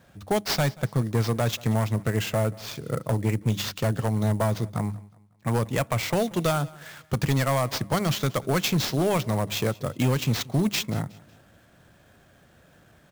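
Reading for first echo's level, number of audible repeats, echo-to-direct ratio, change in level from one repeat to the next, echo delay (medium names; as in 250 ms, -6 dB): -22.0 dB, 2, -21.5 dB, -8.0 dB, 183 ms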